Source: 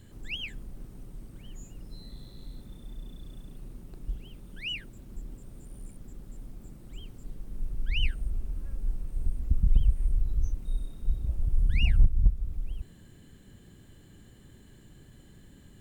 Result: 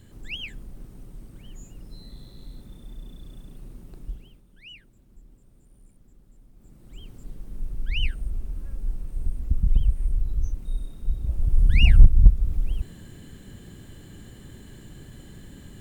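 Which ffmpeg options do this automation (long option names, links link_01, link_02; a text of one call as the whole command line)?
ffmpeg -i in.wav -af "volume=21dB,afade=type=out:start_time=3.99:duration=0.45:silence=0.251189,afade=type=in:start_time=6.52:duration=0.63:silence=0.237137,afade=type=in:start_time=11.16:duration=0.83:silence=0.446684" out.wav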